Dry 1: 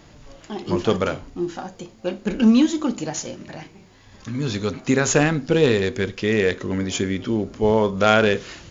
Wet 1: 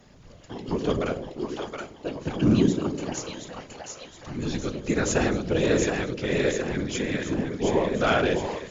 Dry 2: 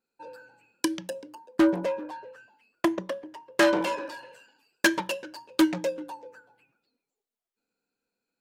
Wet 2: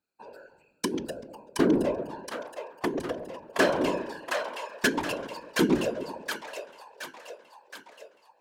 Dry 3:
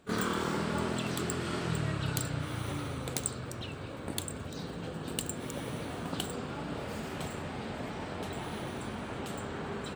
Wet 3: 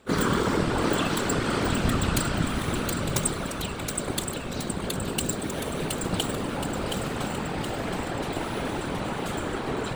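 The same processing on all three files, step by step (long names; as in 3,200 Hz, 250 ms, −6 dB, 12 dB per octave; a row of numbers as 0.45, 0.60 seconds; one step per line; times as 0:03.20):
echo with a time of its own for lows and highs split 540 Hz, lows 98 ms, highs 721 ms, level −4 dB
random phases in short frames
normalise the peak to −9 dBFS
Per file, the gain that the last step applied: −6.5, −2.5, +6.5 decibels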